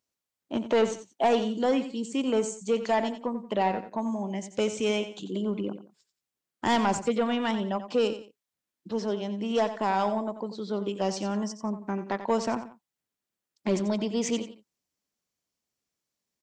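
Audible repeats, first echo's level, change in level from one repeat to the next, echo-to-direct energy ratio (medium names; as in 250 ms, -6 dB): 2, -11.5 dB, -10.5 dB, -11.0 dB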